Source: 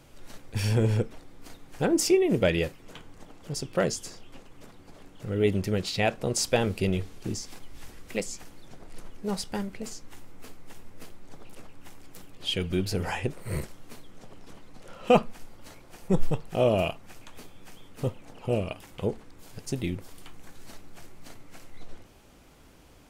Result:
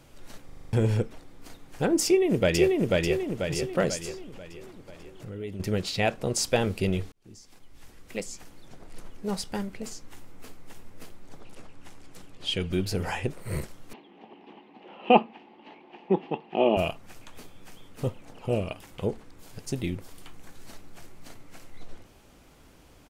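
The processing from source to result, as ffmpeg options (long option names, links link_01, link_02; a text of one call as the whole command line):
ffmpeg -i in.wav -filter_complex "[0:a]asplit=2[link_01][link_02];[link_02]afade=type=in:start_time=2.05:duration=0.01,afade=type=out:start_time=2.93:duration=0.01,aecho=0:1:490|980|1470|1960|2450|2940|3430:0.891251|0.445625|0.222813|0.111406|0.0557032|0.0278516|0.0139258[link_03];[link_01][link_03]amix=inputs=2:normalize=0,asettb=1/sr,asplit=3[link_04][link_05][link_06];[link_04]atrim=end=4.244[link_07];[link_05]atrim=start=4.24:end=5.6,asetpts=PTS-STARTPTS,afade=type=in:duration=0.004:curve=qsin,afade=type=out:start_time=1.356:duration=0.004:curve=qsin,acompressor=threshold=-38dB:ratio=2.5:attack=3.2:release=140:knee=1:detection=peak[link_08];[link_06]atrim=start=5.596[link_09];[link_07][link_08]acrossfade=duration=0.004:curve1=hsin:curve2=qsin[link_10];[link_10][link_09]acrossfade=duration=0.004:curve1=qsin:curve2=hsin,asettb=1/sr,asplit=3[link_11][link_12][link_13];[link_11]atrim=end=11.404[link_14];[link_12]atrim=start=11.4:end=12.72,asetpts=PTS-STARTPTS,afade=type=in:duration=0.004:curve=qsin,afade=type=out:start_time=1.316:duration=0.004:curve=qsin,lowpass=10000[link_15];[link_13]atrim=start=12.716[link_16];[link_14][link_15]acrossfade=duration=0.004:curve1=hsin:curve2=qsin[link_17];[link_17][link_16]acrossfade=duration=0.004:curve1=qsin:curve2=hsin,asettb=1/sr,asplit=3[link_18][link_19][link_20];[link_18]atrim=end=13.934[link_21];[link_19]atrim=start=13.93:end=16.77,asetpts=PTS-STARTPTS,afade=type=in:duration=0.004:curve=qsin,afade=type=out:start_time=2.836:duration=0.004:curve=qsin,highpass=frequency=210:width=0.5412,highpass=frequency=210:width=1.3066,equalizer=frequency=220:width_type=q:width=4:gain=4,equalizer=frequency=360:width_type=q:width=4:gain=7,equalizer=frequency=540:width_type=q:width=4:gain=-5,equalizer=frequency=830:width_type=q:width=4:gain=10,equalizer=frequency=1400:width_type=q:width=4:gain=-10,equalizer=frequency=2800:width_type=q:width=4:gain=7,lowpass=frequency=3100:width=0.5412,lowpass=frequency=3100:width=1.3066[link_22];[link_20]atrim=start=16.766[link_23];[link_21][link_22]acrossfade=duration=0.004:curve1=hsin:curve2=qsin[link_24];[link_24][link_23]acrossfade=duration=0.004:curve1=qsin:curve2=hsin,asplit=9[link_25][link_26][link_27][link_28][link_29][link_30][link_31][link_32][link_33];[link_25]atrim=end=0.492[link_34];[link_26]atrim=start=0.448:end=0.492[link_35];[link_27]atrim=start=0.448:end=0.492[link_36];[link_28]atrim=start=0.448:end=0.492[link_37];[link_29]atrim=start=0.448:end=0.492[link_38];[link_30]atrim=start=0.448:end=0.492[link_39];[link_31]atrim=start=0.448:end=0.492[link_40];[link_32]atrim=start=0.728:end=7.12,asetpts=PTS-STARTPTS,afade=type=out:start_time=6.388:duration=0.004:curve=hsin[link_41];[link_33]atrim=start=7.12,asetpts=PTS-STARTPTS,afade=type=in:duration=2.16:curve=qsin[link_42];[link_34][link_35]acrossfade=duration=0.004:curve1=hsin:curve2=hsin[link_43];[link_43][link_36]acrossfade=duration=0.004:curve1=hsin:curve2=hsin[link_44];[link_44][link_37]acrossfade=duration=0.004:curve1=hsin:curve2=hsin[link_45];[link_45][link_38]acrossfade=duration=0.004:curve1=hsin:curve2=hsin[link_46];[link_46][link_39]acrossfade=duration=0.004:curve1=hsin:curve2=hsin[link_47];[link_47][link_40]acrossfade=duration=0.004:curve1=hsin:curve2=hsin[link_48];[link_41][link_42]concat=n=2:v=0:a=1[link_49];[link_48][link_49]acrossfade=duration=0.004:curve1=hsin:curve2=hsin" out.wav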